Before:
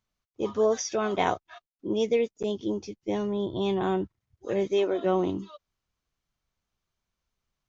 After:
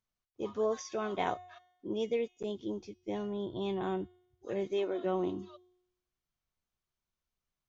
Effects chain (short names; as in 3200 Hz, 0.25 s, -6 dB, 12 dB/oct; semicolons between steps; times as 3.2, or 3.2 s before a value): dynamic EQ 5700 Hz, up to -6 dB, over -59 dBFS, Q 3.3; resonator 360 Hz, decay 0.83 s, mix 60%; de-hum 45.88 Hz, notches 2